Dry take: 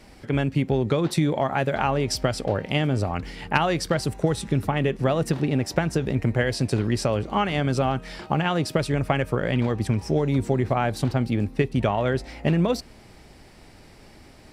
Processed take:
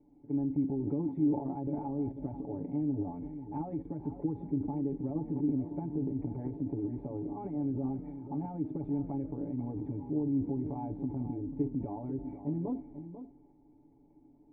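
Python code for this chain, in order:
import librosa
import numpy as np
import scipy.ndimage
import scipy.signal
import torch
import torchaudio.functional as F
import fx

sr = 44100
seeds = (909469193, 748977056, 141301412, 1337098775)

p1 = x + 0.98 * np.pad(x, (int(7.0 * sr / 1000.0), 0))[:len(x)]
p2 = fx.transient(p1, sr, attack_db=0, sustain_db=12)
p3 = fx.formant_cascade(p2, sr, vowel='u')
p4 = p3 + fx.echo_single(p3, sr, ms=492, db=-11.5, dry=0)
y = F.gain(torch.from_numpy(p4), -8.0).numpy()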